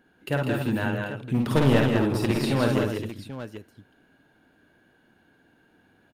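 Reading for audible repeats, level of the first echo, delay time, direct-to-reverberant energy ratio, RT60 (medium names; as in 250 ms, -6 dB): 5, -4.0 dB, 51 ms, no reverb, no reverb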